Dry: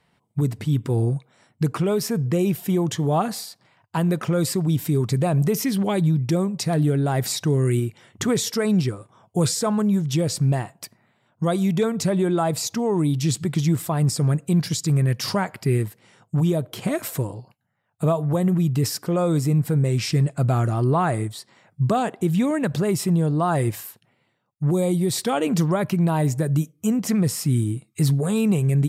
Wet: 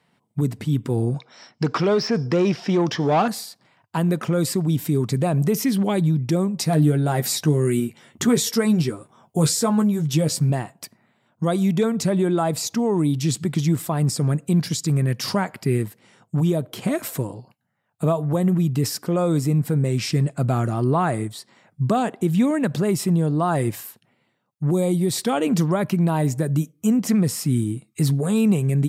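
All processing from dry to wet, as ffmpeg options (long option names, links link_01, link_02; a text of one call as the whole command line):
ffmpeg -i in.wav -filter_complex "[0:a]asettb=1/sr,asplit=3[link_01][link_02][link_03];[link_01]atrim=end=1.144[link_04];[link_02]atrim=start=1.14:end=3.28,asetpts=PTS-STARTPTS,afade=type=in:duration=0.004:curve=qsin,afade=type=out:start_time=2.136:duration=0.004:curve=qsin,acrossover=split=2700[link_05][link_06];[link_06]acompressor=threshold=-46dB:ratio=4:attack=1:release=60[link_07];[link_05][link_07]amix=inputs=2:normalize=0,lowpass=frequency=5300:width_type=q:width=8.9,asplit=2[link_08][link_09];[link_09]highpass=frequency=720:poles=1,volume=16dB,asoftclip=type=tanh:threshold=-11dB[link_10];[link_08][link_10]amix=inputs=2:normalize=0,lowpass=frequency=2900:poles=1,volume=-6dB[link_11];[link_03]atrim=start=3.276[link_12];[link_04][link_11]acrossfade=duration=0.004:curve1=hsin:curve2=qsin[link_13];[link_13][link_12]acrossfade=duration=0.004:curve1=qsin:curve2=hsin,asettb=1/sr,asplit=3[link_14][link_15][link_16];[link_14]atrim=end=6.574[link_17];[link_15]atrim=start=6.57:end=10.5,asetpts=PTS-STARTPTS,afade=type=in:duration=0.004:curve=qsin,afade=type=out:start_time=3.926:duration=0.004:curve=qsin,highshelf=frequency=11000:gain=6.5,asplit=2[link_18][link_19];[link_19]adelay=13,volume=-6dB[link_20];[link_18][link_20]amix=inputs=2:normalize=0,atrim=end_sample=173313[link_21];[link_16]atrim=start=10.496[link_22];[link_17][link_21]acrossfade=duration=0.004:curve1=hsin:curve2=qsin[link_23];[link_23][link_22]acrossfade=duration=0.004:curve1=qsin:curve2=hsin,highpass=110,equalizer=frequency=240:width=2.2:gain=3.5" out.wav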